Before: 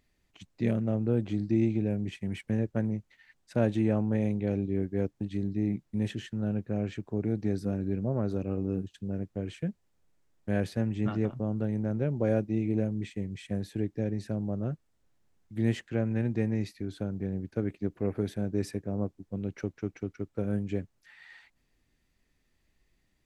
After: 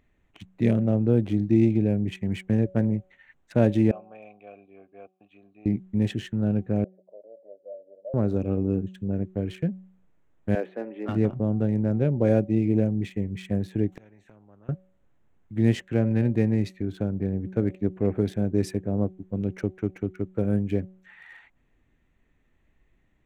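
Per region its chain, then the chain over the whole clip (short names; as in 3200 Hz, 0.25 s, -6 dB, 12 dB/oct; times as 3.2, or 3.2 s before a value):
3.91–5.66 vowel filter a + tilt shelf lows -8 dB, about 1200 Hz + notch 800 Hz, Q 14
6.84–8.14 upward compressor, threshold -37 dBFS + Butterworth band-pass 580 Hz, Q 6.5
10.55–11.09 HPF 350 Hz 24 dB/oct + air absorption 370 m
13.92–14.69 flipped gate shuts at -31 dBFS, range -31 dB + spectral compressor 2:1
whole clip: Wiener smoothing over 9 samples; dynamic EQ 1300 Hz, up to -4 dB, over -49 dBFS, Q 1.1; de-hum 187.2 Hz, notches 4; gain +6.5 dB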